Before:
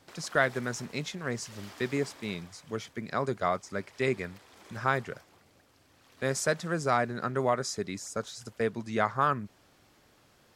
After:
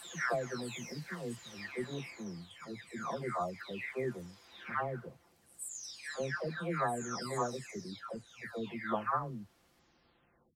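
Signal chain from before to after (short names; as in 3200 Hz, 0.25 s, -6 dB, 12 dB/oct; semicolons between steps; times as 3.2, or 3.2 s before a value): spectral delay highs early, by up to 0.761 s; gain -4.5 dB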